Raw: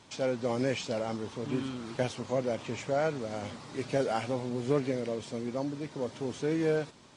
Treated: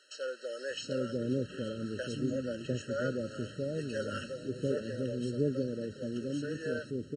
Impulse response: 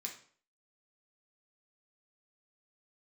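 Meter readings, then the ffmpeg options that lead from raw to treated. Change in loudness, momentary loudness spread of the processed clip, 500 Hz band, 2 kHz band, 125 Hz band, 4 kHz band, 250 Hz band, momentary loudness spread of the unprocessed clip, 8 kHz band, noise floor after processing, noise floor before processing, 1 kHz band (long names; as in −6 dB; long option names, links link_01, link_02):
−3.0 dB, 6 LU, −4.0 dB, −2.0 dB, −0.5 dB, −2.0 dB, −1.5 dB, 7 LU, −4.0 dB, −50 dBFS, −55 dBFS, −11.5 dB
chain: -filter_complex "[0:a]acrossover=split=530[link_01][link_02];[link_01]adelay=700[link_03];[link_03][link_02]amix=inputs=2:normalize=0,afftfilt=real='re*eq(mod(floor(b*sr/1024/640),2),0)':imag='im*eq(mod(floor(b*sr/1024/640),2),0)':win_size=1024:overlap=0.75"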